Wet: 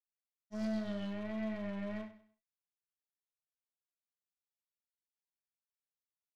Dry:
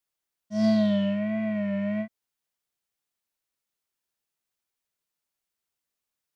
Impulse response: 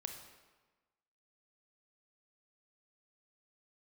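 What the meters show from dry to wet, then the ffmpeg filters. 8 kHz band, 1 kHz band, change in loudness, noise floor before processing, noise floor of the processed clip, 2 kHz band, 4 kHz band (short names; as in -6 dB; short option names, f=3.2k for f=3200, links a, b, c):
n/a, -9.5 dB, -13.5 dB, under -85 dBFS, under -85 dBFS, -10.0 dB, -13.0 dB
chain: -filter_complex "[0:a]acompressor=threshold=-26dB:ratio=4,aeval=exprs='0.0944*(cos(1*acos(clip(val(0)/0.0944,-1,1)))-cos(1*PI/2))+0.0133*(cos(2*acos(clip(val(0)/0.0944,-1,1)))-cos(2*PI/2))+0.00596*(cos(6*acos(clip(val(0)/0.0944,-1,1)))-cos(6*PI/2))+0.00944*(cos(7*acos(clip(val(0)/0.0944,-1,1)))-cos(7*PI/2))+0.0015*(cos(8*acos(clip(val(0)/0.0944,-1,1)))-cos(8*PI/2))':c=same,asoftclip=type=hard:threshold=-22dB,aecho=1:1:97|194|291:0.2|0.0658|0.0217[a];[1:a]atrim=start_sample=2205,atrim=end_sample=3528[b];[a][b]afir=irnorm=-1:irlink=0,volume=-7.5dB"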